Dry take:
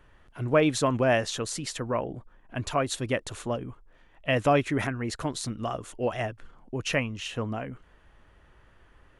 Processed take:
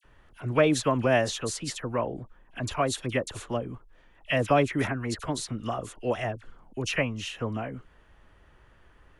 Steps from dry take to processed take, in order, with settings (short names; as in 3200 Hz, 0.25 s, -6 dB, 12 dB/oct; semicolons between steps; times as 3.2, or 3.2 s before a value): dispersion lows, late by 45 ms, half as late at 1800 Hz